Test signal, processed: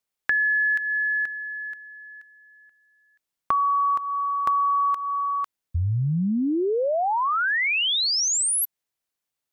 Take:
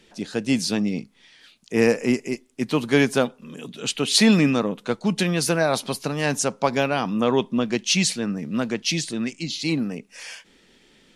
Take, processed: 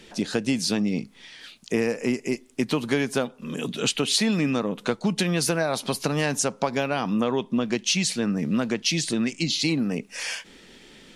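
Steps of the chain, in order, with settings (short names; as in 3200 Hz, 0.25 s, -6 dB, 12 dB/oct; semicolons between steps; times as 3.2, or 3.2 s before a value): compressor 6:1, threshold -28 dBFS; gain +7 dB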